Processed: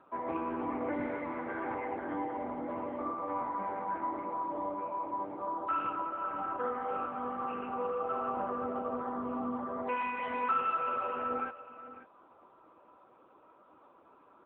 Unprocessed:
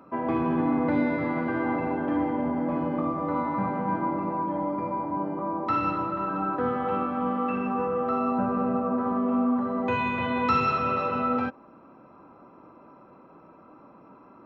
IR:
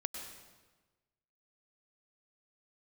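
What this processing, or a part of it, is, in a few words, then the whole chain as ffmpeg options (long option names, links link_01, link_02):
satellite phone: -af "highpass=400,lowpass=3100,aecho=1:1:548:0.178,volume=-4.5dB" -ar 8000 -c:a libopencore_amrnb -b:a 6700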